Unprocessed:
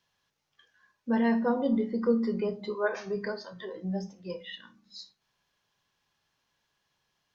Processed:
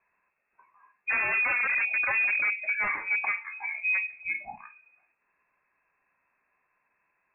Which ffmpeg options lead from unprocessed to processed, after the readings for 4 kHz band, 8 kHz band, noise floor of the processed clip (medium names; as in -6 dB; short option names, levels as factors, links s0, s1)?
under -25 dB, no reading, -77 dBFS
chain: -af "aeval=exprs='0.0447*(abs(mod(val(0)/0.0447+3,4)-2)-1)':c=same,lowpass=f=2300:t=q:w=0.5098,lowpass=f=2300:t=q:w=0.6013,lowpass=f=2300:t=q:w=0.9,lowpass=f=2300:t=q:w=2.563,afreqshift=-2700,volume=1.88"